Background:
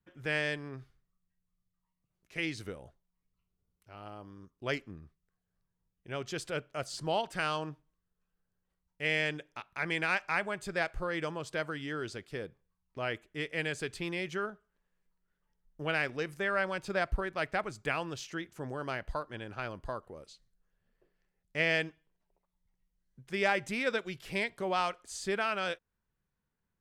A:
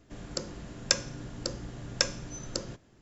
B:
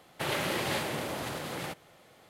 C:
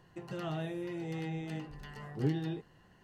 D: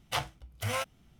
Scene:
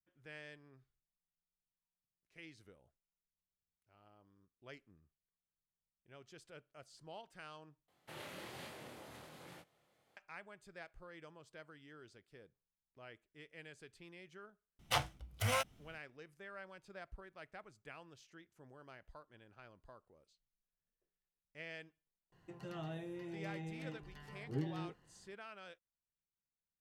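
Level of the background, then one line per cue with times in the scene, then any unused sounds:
background -20 dB
7.88 replace with B -15.5 dB + chorus 1.2 Hz
14.79 add D -2 dB
22.32 add C -7.5 dB
not used: A

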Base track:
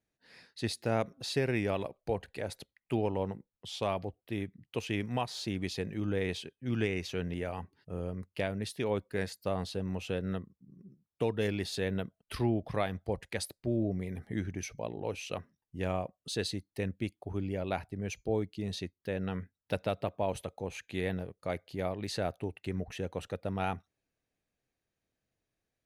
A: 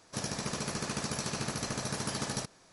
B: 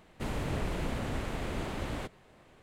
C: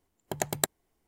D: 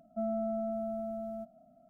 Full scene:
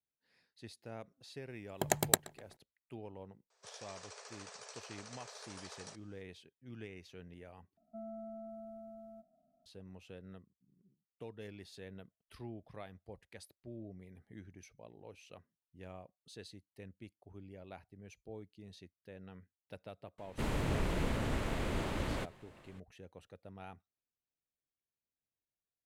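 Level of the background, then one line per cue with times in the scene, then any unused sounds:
base track -17 dB
1.5 add C -0.5 dB + darkening echo 0.125 s, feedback 55%, low-pass 4400 Hz, level -21 dB
3.5 add A -14 dB + FFT band-pass 390–9700 Hz
7.77 replace with D -13 dB
20.18 add B -0.5 dB + notch 750 Hz, Q 18

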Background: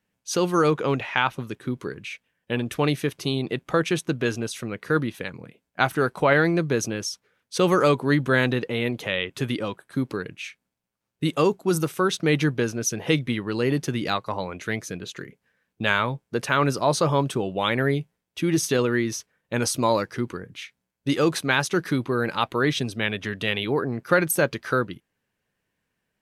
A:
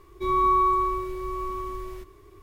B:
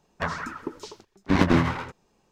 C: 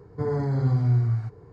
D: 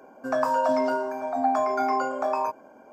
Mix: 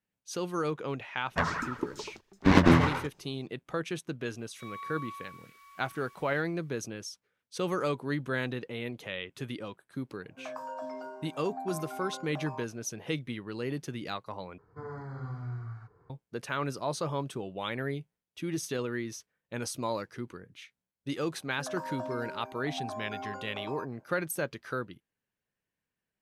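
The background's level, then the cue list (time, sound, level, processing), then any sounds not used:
background -11.5 dB
1.16 add B
4.38 add A -8.5 dB + elliptic high-pass 1300 Hz
10.13 add D -16.5 dB
14.58 replace with C -17 dB + bell 1300 Hz +15 dB 1.1 oct
21.34 add D -15.5 dB

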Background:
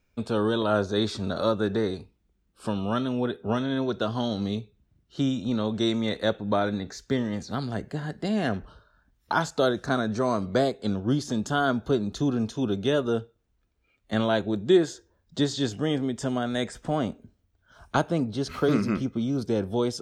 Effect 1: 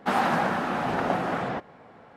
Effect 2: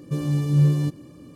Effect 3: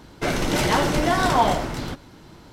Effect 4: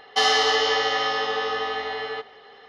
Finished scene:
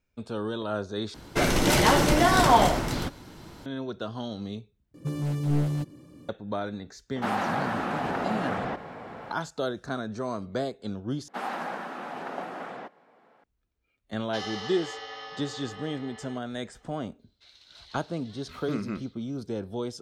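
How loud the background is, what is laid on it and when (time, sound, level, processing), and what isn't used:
background -7 dB
1.14 replace with 3 + high shelf 8100 Hz +5 dB
4.94 replace with 2 -5 dB + one-sided fold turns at -18.5 dBFS
7.16 add 1 -5.5 dB + fast leveller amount 50%
11.28 replace with 1 -9 dB + HPF 250 Hz
14.17 add 4 -17 dB
17.19 add 3 -15 dB + band-pass 4000 Hz, Q 6.2

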